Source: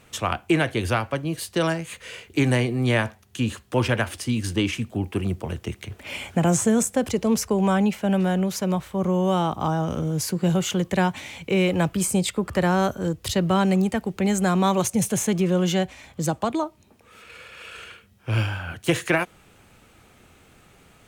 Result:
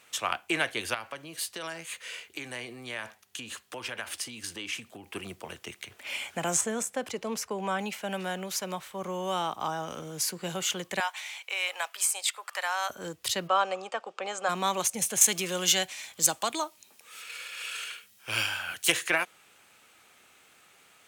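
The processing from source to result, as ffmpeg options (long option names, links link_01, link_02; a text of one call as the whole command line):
ffmpeg -i in.wav -filter_complex "[0:a]asettb=1/sr,asplit=3[link_01][link_02][link_03];[link_01]atrim=end=0.944[link_04];[link_02]atrim=start=0.94:end=5.1,asetpts=PTS-STARTPTS,afade=type=in:duration=0.004:curve=qsin,afade=type=out:start_time=4.156:duration=0.004:curve=qsin,acompressor=threshold=-26dB:ratio=6:attack=3.2:release=140:knee=1:detection=peak[link_05];[link_03]atrim=start=5.096[link_06];[link_04][link_05]acrossfade=duration=0.004:curve1=hsin:curve2=qsin[link_07];[link_07][link_06]acrossfade=duration=0.004:curve1=qsin:curve2=hsin,asettb=1/sr,asplit=3[link_08][link_09][link_10];[link_08]atrim=end=6.614[link_11];[link_09]atrim=start=6.61:end=7.79,asetpts=PTS-STARTPTS,afade=type=in:duration=0.004:curve=qsin,afade=type=out:start_time=1.176:duration=0.004:curve=qsin,highshelf=frequency=3500:gain=-8.5[link_12];[link_10]atrim=start=7.786[link_13];[link_11][link_12]acrossfade=duration=0.004:curve1=hsin:curve2=qsin[link_14];[link_14][link_13]acrossfade=duration=0.004:curve1=qsin:curve2=hsin,asettb=1/sr,asplit=3[link_15][link_16][link_17];[link_15]atrim=end=11.004[link_18];[link_16]atrim=start=11:end=12.9,asetpts=PTS-STARTPTS,afade=type=in:duration=0.004:curve=qsin,afade=type=out:start_time=1.896:duration=0.004:curve=qsin,highpass=frequency=700:width=0.5412,highpass=frequency=700:width=1.3066[link_19];[link_17]atrim=start=12.896[link_20];[link_18][link_19]acrossfade=duration=0.004:curve1=hsin:curve2=qsin[link_21];[link_21][link_20]acrossfade=duration=0.004:curve1=qsin:curve2=hsin,asplit=3[link_22][link_23][link_24];[link_22]afade=type=out:start_time=13.47:duration=0.02[link_25];[link_23]highpass=490,equalizer=frequency=530:width_type=q:width=4:gain=9,equalizer=frequency=760:width_type=q:width=4:gain=4,equalizer=frequency=1200:width_type=q:width=4:gain=9,equalizer=frequency=2000:width_type=q:width=4:gain=-8,equalizer=frequency=4200:width_type=q:width=4:gain=-6,equalizer=frequency=6100:width_type=q:width=4:gain=-5,lowpass=frequency=6400:width=0.5412,lowpass=frequency=6400:width=1.3066,afade=type=in:start_time=13.47:duration=0.02,afade=type=out:start_time=14.48:duration=0.02[link_26];[link_24]afade=type=in:start_time=14.48:duration=0.02[link_27];[link_25][link_26][link_27]amix=inputs=3:normalize=0,asettb=1/sr,asplit=3[link_28][link_29][link_30];[link_28]atrim=end=15.214[link_31];[link_29]atrim=start=15.21:end=18.92,asetpts=PTS-STARTPTS,afade=type=in:duration=0.004:curve=qsin,afade=type=out:start_time=3.706:duration=0.004:curve=qsin,highshelf=frequency=2900:gain=12[link_32];[link_30]atrim=start=18.916[link_33];[link_31][link_32]acrossfade=duration=0.004:curve1=hsin:curve2=qsin[link_34];[link_34][link_33]acrossfade=duration=0.004:curve1=qsin:curve2=hsin,highpass=frequency=1400:poles=1" out.wav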